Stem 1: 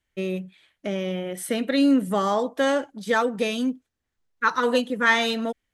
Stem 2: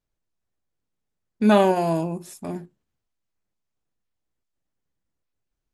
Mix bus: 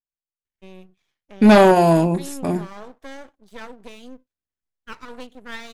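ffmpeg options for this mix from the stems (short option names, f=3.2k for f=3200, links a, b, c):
-filter_complex "[0:a]aeval=exprs='max(val(0),0)':c=same,adelay=450,volume=-12.5dB[a];[1:a]agate=range=-33dB:threshold=-38dB:ratio=3:detection=peak,aeval=exprs='0.562*sin(PI/2*2*val(0)/0.562)':c=same,volume=-1dB[b];[a][b]amix=inputs=2:normalize=0"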